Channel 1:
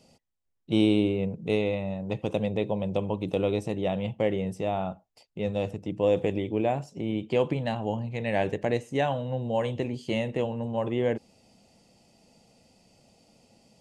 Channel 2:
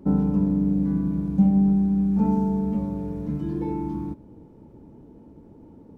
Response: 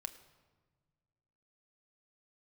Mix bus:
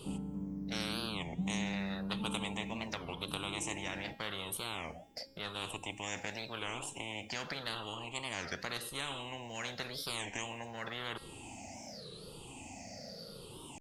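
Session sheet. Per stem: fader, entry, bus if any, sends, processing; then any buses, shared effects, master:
-5.0 dB, 0.00 s, no send, drifting ripple filter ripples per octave 0.64, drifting -0.89 Hz, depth 21 dB; spectrum-flattening compressor 10:1
-11.5 dB, 0.00 s, no send, none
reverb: none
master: feedback comb 270 Hz, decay 1 s, mix 60%; warped record 33 1/3 rpm, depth 250 cents

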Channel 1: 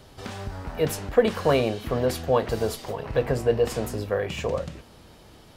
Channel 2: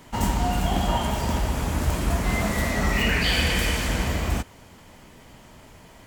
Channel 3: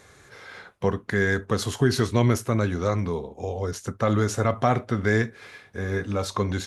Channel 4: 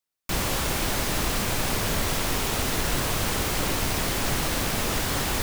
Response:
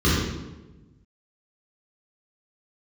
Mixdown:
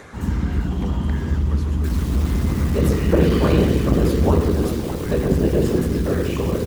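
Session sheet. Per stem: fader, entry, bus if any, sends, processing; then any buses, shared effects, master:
-0.5 dB, 1.95 s, send -16 dB, whisper effect
-11.5 dB, 0.00 s, send -12 dB, none
-9.0 dB, 0.00 s, no send, feedback comb 52 Hz, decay 0.2 s, harmonics all, mix 50%; three bands compressed up and down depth 100%
-2.0 dB, 1.55 s, no send, overload inside the chain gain 32 dB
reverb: on, RT60 1.1 s, pre-delay 3 ms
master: harmonic-percussive split harmonic -8 dB; transformer saturation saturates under 190 Hz

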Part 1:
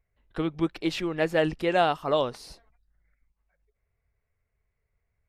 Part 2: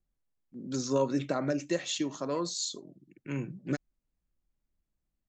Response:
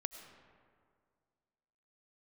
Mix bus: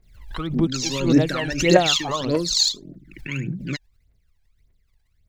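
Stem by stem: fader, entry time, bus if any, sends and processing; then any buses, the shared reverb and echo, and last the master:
-2.0 dB, 0.00 s, no send, none
+2.5 dB, 0.00 s, no send, graphic EQ 1/2/4 kHz -10/+8/+9 dB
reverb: none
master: phaser 1.7 Hz, delay 1.3 ms, feedback 78%; swell ahead of each attack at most 84 dB/s

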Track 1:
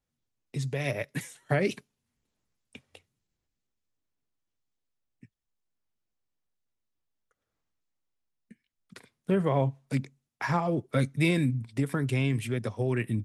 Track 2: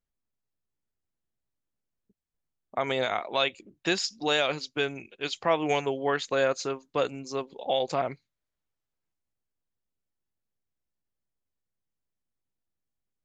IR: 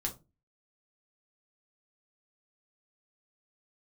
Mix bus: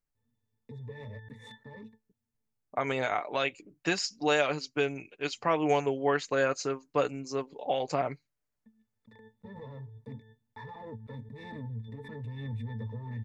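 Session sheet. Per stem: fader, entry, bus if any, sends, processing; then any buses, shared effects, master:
-14.0 dB, 0.15 s, no send, waveshaping leveller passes 5; pitch-class resonator A, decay 0.15 s; swell ahead of each attack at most 34 dB/s; auto duck -23 dB, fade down 1.25 s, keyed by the second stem
-1.5 dB, 0.00 s, no send, peaking EQ 3.5 kHz -10.5 dB 0.3 oct; comb 6.8 ms, depth 40%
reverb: none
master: none

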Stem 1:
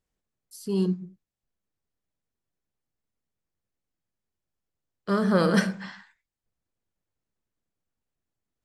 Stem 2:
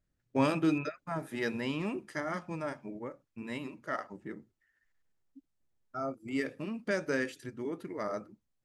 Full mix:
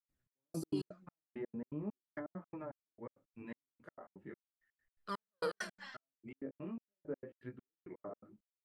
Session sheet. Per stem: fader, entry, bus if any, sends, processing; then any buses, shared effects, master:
-10.5 dB, 0.00 s, no send, high-pass 700 Hz 6 dB/octave; phaser 0.41 Hz, delay 4.5 ms, feedback 60%; endings held to a fixed fall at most 260 dB/s
-3.5 dB, 0.00 s, no send, low-pass that closes with the level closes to 660 Hz, closed at -31 dBFS; peaking EQ 5.8 kHz -14.5 dB 0.74 oct; chorus 0.39 Hz, delay 15.5 ms, depth 6.7 ms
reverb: none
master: trance gate ".xx...x.x" 166 bpm -60 dB

